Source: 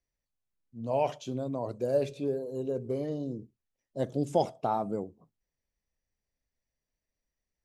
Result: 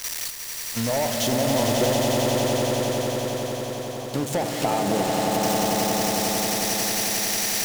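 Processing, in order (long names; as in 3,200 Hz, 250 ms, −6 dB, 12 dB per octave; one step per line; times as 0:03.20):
spike at every zero crossing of −24 dBFS
low-pass filter 3,500 Hz 6 dB per octave
noise gate −46 dBFS, range −6 dB
leveller curve on the samples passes 3
downward compressor, threshold −27 dBFS, peak gain reduction 10 dB
0:01.92–0:04.14: formant resonators in series a
echo that builds up and dies away 90 ms, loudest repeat 8, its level −6 dB
highs frequency-modulated by the lows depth 0.18 ms
level +4 dB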